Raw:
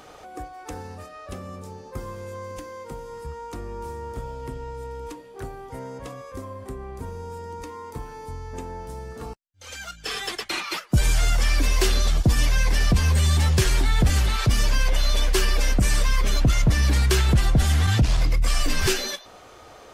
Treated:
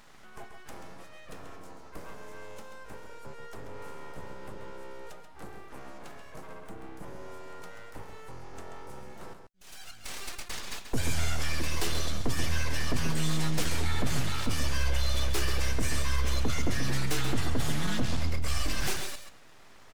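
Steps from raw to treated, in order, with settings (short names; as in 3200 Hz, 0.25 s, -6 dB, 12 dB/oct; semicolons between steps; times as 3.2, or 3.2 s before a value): full-wave rectifier; outdoor echo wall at 23 m, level -7 dB; gain -7 dB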